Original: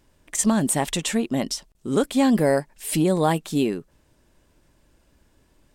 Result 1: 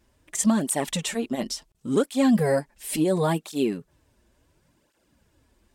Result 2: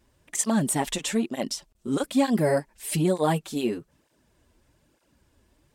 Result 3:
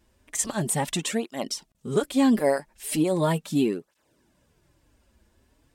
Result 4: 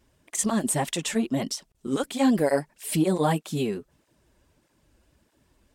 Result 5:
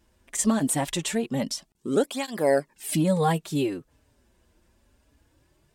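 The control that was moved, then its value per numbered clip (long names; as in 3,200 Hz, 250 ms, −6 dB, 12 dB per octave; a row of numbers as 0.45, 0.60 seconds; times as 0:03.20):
through-zero flanger with one copy inverted, nulls at: 0.71, 1.1, 0.38, 1.6, 0.22 Hertz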